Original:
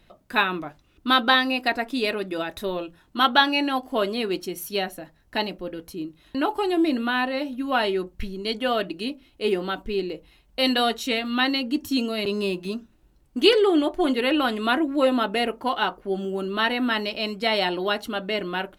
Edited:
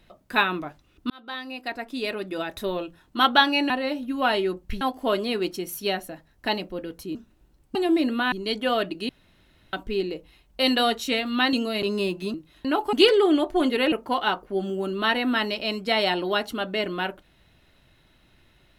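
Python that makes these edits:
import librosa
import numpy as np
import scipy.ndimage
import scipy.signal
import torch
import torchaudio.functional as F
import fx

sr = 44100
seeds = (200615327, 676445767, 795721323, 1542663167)

y = fx.edit(x, sr, fx.fade_in_span(start_s=1.1, length_s=1.55),
    fx.swap(start_s=6.04, length_s=0.59, other_s=12.77, other_length_s=0.6),
    fx.move(start_s=7.2, length_s=1.11, to_s=3.7),
    fx.room_tone_fill(start_s=9.08, length_s=0.64),
    fx.cut(start_s=11.52, length_s=0.44),
    fx.cut(start_s=14.36, length_s=1.11), tone=tone)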